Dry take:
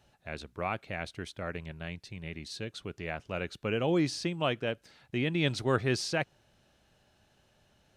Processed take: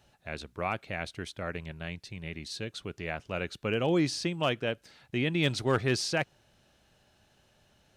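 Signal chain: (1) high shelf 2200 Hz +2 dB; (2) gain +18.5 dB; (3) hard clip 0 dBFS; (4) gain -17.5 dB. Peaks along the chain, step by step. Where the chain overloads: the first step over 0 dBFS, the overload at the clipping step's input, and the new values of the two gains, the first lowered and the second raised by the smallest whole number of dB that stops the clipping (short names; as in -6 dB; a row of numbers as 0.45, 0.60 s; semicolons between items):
-13.0, +5.5, 0.0, -17.5 dBFS; step 2, 5.5 dB; step 2 +12.5 dB, step 4 -11.5 dB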